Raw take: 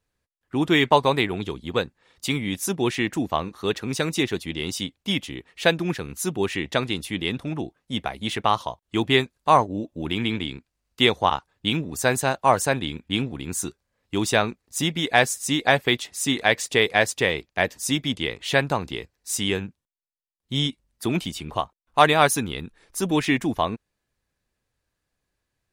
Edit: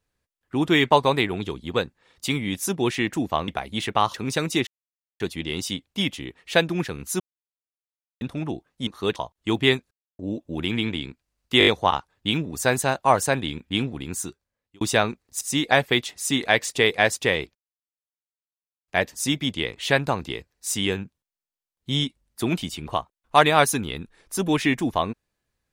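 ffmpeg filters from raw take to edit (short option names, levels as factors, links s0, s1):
-filter_complex "[0:a]asplit=17[s0][s1][s2][s3][s4][s5][s6][s7][s8][s9][s10][s11][s12][s13][s14][s15][s16];[s0]atrim=end=3.482[s17];[s1]atrim=start=7.968:end=8.632[s18];[s2]atrim=start=3.768:end=4.3,asetpts=PTS-STARTPTS,afade=t=out:st=0.528:d=0.004:c=hsin,apad=pad_dur=0.53[s19];[s3]atrim=start=4.3:end=6.3,asetpts=PTS-STARTPTS,afade=t=in:d=0.004:c=hsin,afade=t=out:st=1.996:d=0.004:c=hsin[s20];[s4]atrim=start=6.3:end=7.31,asetpts=PTS-STARTPTS,volume=0[s21];[s5]atrim=start=7.31:end=7.972,asetpts=PTS-STARTPTS,afade=t=in:d=0.004:c=hsin[s22];[s6]atrim=start=3.478:end=3.772[s23];[s7]atrim=start=8.628:end=9.38,asetpts=PTS-STARTPTS,afade=t=out:st=0.748:d=0.004:c=hsin[s24];[s8]atrim=start=9.38:end=9.66,asetpts=PTS-STARTPTS,volume=0[s25];[s9]atrim=start=9.66:end=11.082,asetpts=PTS-STARTPTS,afade=t=in:d=0.004:c=hsin[s26];[s10]atrim=start=11.058:end=11.082[s27];[s11]atrim=start=11.058:end=11.082[s28];[s12]atrim=start=11.058:end=11.082[s29];[s13]atrim=start=11.058:end=14.2,asetpts=PTS-STARTPTS,afade=t=out:st=2.352:d=0.79[s30];[s14]atrim=start=14.2:end=14.802,asetpts=PTS-STARTPTS,afade=t=in:d=0.004:c=hsin[s31];[s15]atrim=start=15.368:end=17.51,asetpts=PTS-STARTPTS,afade=t=out:st=2.138:d=0.004:c=hsin,apad=pad_dur=1.33[s32];[s16]atrim=start=17.51,asetpts=PTS-STARTPTS,afade=t=in:d=0.004:c=hsin[s33];[s17][s18]acrossfade=d=0.004:c1=hsin:c2=hsin[s34];[s19][s20][s21][s22]concat=n=4:v=0:a=1[s35];[s34][s35]acrossfade=d=0.004:c1=hsin:c2=hsin[s36];[s36][s23]acrossfade=d=0.004:c1=hsin:c2=hsin[s37];[s24][s25][s26]concat=n=3:v=0:a=1[s38];[s37][s38]acrossfade=d=0.004:c1=hsin:c2=hsin[s39];[s39][s27]acrossfade=d=0.004:c1=hsin:c2=hsin[s40];[s40][s28]acrossfade=d=0.004:c1=hsin:c2=hsin[s41];[s41][s29]acrossfade=d=0.004:c1=hsin:c2=hsin[s42];[s30][s31]concat=n=2:v=0:a=1[s43];[s42][s43]acrossfade=d=0.004:c1=hsin:c2=hsin[s44];[s32][s33]concat=n=2:v=0:a=1[s45];[s44][s45]acrossfade=d=0.004:c1=hsin:c2=hsin"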